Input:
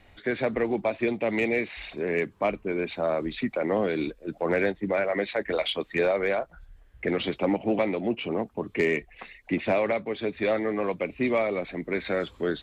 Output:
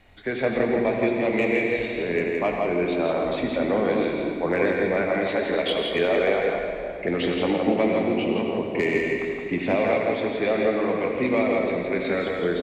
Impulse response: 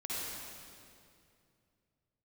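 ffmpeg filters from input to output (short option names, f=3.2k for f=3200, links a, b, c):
-filter_complex "[0:a]aecho=1:1:167:0.596,asplit=2[a][b];[1:a]atrim=start_sample=2205,adelay=23[c];[b][c]afir=irnorm=-1:irlink=0,volume=-4.5dB[d];[a][d]amix=inputs=2:normalize=0"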